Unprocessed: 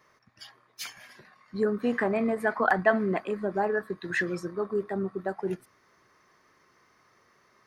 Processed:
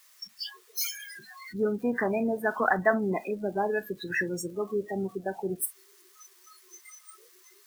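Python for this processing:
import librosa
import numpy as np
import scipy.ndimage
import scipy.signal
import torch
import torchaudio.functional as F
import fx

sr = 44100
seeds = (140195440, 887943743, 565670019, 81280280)

y = x + 0.5 * 10.0 ** (-19.0 / 20.0) * np.diff(np.sign(x), prepend=np.sign(x[:1]))
y = fx.noise_reduce_blind(y, sr, reduce_db=28)
y = y * librosa.db_to_amplitude(-1.0)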